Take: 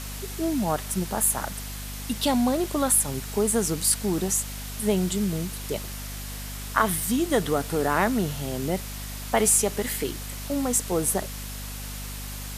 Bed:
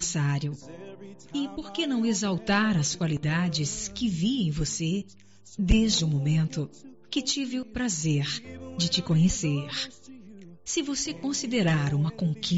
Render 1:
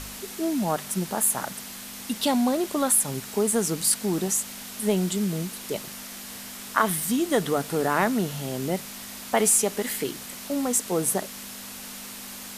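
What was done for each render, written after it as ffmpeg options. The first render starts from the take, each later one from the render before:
-af "bandreject=f=50:t=h:w=4,bandreject=f=100:t=h:w=4,bandreject=f=150:t=h:w=4"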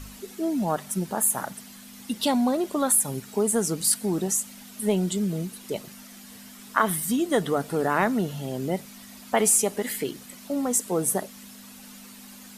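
-af "afftdn=nr=10:nf=-39"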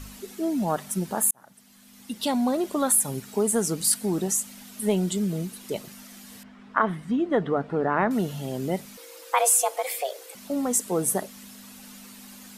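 -filter_complex "[0:a]asettb=1/sr,asplit=3[s0][s1][s2];[s0]atrim=end=6.434[s3];[s1]atrim=start=6.43:end=8.11,asetpts=PTS-STARTPTS,afade=t=in:d=0.004:c=qsin,afade=t=out:st=1.676:d=0.004:c=qsin,lowpass=1900[s4];[s2]atrim=start=8.106[s5];[s3][s4]acrossfade=d=0.004:c1=hsin:c2=qsin[s6];[s6][s5]acrossfade=d=0.004:c1=qsin:c2=hsin,asettb=1/sr,asplit=3[s7][s8][s9];[s7]atrim=end=8.974[s10];[s8]atrim=start=8.97:end=10.35,asetpts=PTS-STARTPTS,afade=t=in:d=0.004:c=qsin,afade=t=out:st=1.376:d=0.004:c=qsin,afreqshift=270[s11];[s9]atrim=start=10.346[s12];[s10][s11]acrossfade=d=0.004:c1=hsin:c2=qsin[s13];[s13][s12]acrossfade=d=0.004:c1=qsin:c2=hsin,asplit=2[s14][s15];[s14]atrim=end=1.31,asetpts=PTS-STARTPTS,afade=t=out:st=1.306:d=0.004:c=hsin[s16];[s15]atrim=start=1.31,asetpts=PTS-STARTPTS,afade=t=in:d=1.29[s17];[s16][s17]concat=n=2:v=0:a=1"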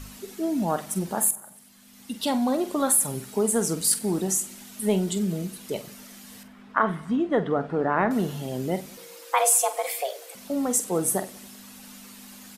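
-filter_complex "[0:a]asplit=2[s0][s1];[s1]adelay=47,volume=0.251[s2];[s0][s2]amix=inputs=2:normalize=0,aecho=1:1:95|190|285|380:0.075|0.045|0.027|0.0162"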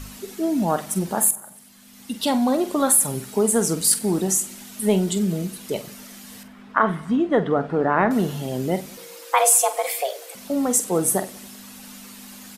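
-af "volume=1.58,alimiter=limit=0.708:level=0:latency=1"

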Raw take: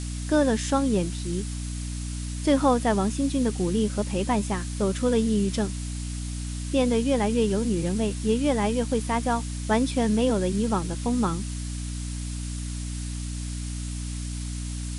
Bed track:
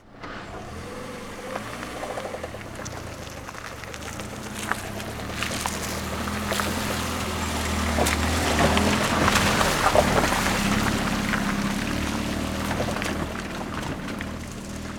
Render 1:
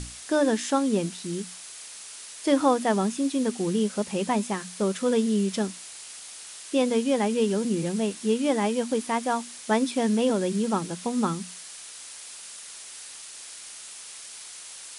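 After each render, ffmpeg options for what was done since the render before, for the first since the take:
-af "bandreject=f=60:t=h:w=6,bandreject=f=120:t=h:w=6,bandreject=f=180:t=h:w=6,bandreject=f=240:t=h:w=6,bandreject=f=300:t=h:w=6"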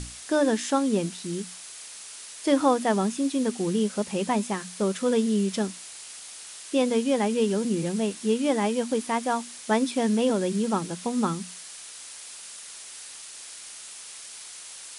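-af anull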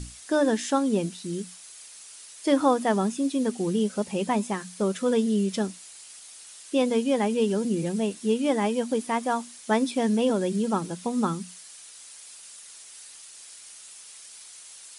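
-af "afftdn=nr=7:nf=-43"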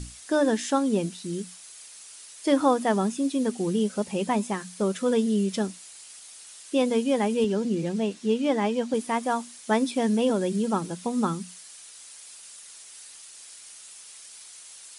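-filter_complex "[0:a]asettb=1/sr,asplit=3[s0][s1][s2];[s0]atrim=end=7.444[s3];[s1]atrim=start=7.44:end=8.94,asetpts=PTS-STARTPTS,afade=t=in:d=0.004:c=qsin,afade=t=out:st=1.496:d=0.004:c=qsin,highpass=110,lowpass=6400[s4];[s2]atrim=start=8.936[s5];[s3][s4]acrossfade=d=0.004:c1=hsin:c2=qsin[s6];[s6][s5]acrossfade=d=0.004:c1=qsin:c2=hsin"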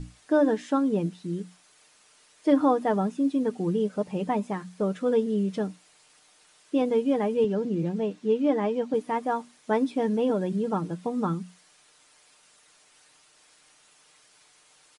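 -af "lowpass=f=1100:p=1,aecho=1:1:6.6:0.43"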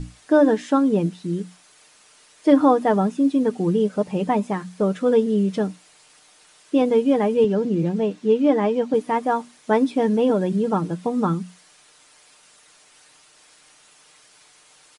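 -af "volume=2"

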